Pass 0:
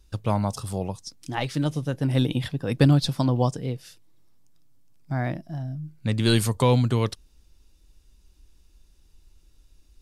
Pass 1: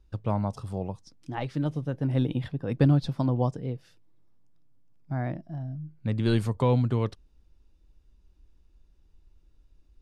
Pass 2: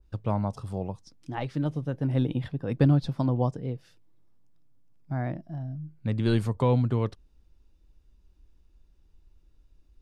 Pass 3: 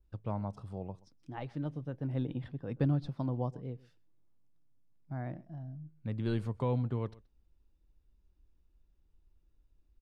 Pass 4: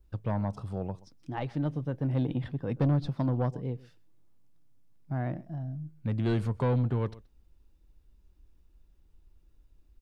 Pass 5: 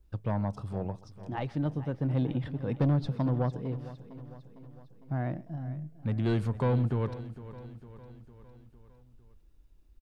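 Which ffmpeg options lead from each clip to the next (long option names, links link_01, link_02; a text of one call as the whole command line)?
ffmpeg -i in.wav -af "lowpass=frequency=1300:poles=1,volume=-3dB" out.wav
ffmpeg -i in.wav -af "adynamicequalizer=threshold=0.00708:dfrequency=2000:dqfactor=0.7:tfrequency=2000:tqfactor=0.7:attack=5:release=100:ratio=0.375:range=2:mode=cutabove:tftype=highshelf" out.wav
ffmpeg -i in.wav -filter_complex "[0:a]aemphasis=mode=reproduction:type=cd,asplit=2[link_01][link_02];[link_02]adelay=128.3,volume=-22dB,highshelf=frequency=4000:gain=-2.89[link_03];[link_01][link_03]amix=inputs=2:normalize=0,volume=-9dB" out.wav
ffmpeg -i in.wav -af "asoftclip=type=tanh:threshold=-27.5dB,volume=7.5dB" out.wav
ffmpeg -i in.wav -af "aecho=1:1:455|910|1365|1820|2275:0.178|0.0996|0.0558|0.0312|0.0175" out.wav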